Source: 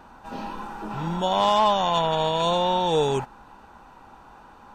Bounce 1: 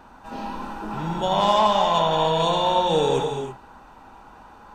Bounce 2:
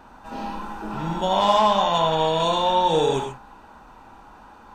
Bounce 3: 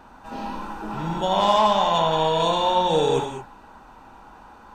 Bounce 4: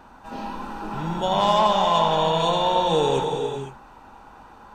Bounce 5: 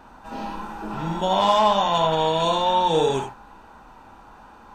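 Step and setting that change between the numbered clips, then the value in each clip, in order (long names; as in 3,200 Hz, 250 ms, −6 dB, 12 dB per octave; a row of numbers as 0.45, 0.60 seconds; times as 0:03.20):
reverb whose tail is shaped and stops, gate: 350, 160, 240, 540, 110 milliseconds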